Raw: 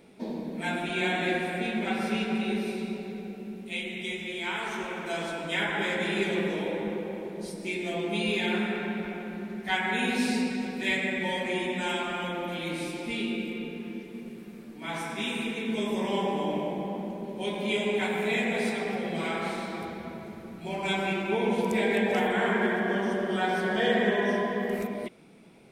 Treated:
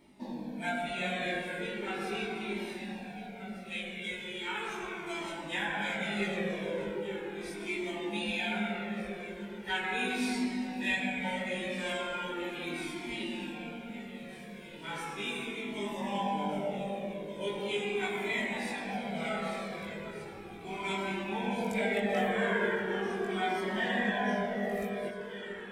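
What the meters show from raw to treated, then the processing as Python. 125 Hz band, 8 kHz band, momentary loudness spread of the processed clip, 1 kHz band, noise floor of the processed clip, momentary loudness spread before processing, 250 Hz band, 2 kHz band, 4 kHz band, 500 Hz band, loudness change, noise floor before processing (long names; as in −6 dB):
−5.5 dB, −4.0 dB, 11 LU, −3.5 dB, −45 dBFS, 11 LU, −6.0 dB, −4.0 dB, −4.5 dB, −5.5 dB, −5.0 dB, −44 dBFS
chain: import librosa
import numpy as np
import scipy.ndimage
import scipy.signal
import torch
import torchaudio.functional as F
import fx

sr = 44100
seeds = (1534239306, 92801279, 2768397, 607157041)

y = fx.doubler(x, sr, ms=20.0, db=-2.5)
y = fx.echo_alternate(y, sr, ms=766, hz=810.0, feedback_pct=72, wet_db=-10)
y = fx.comb_cascade(y, sr, direction='falling', hz=0.38)
y = y * librosa.db_to_amplitude(-2.0)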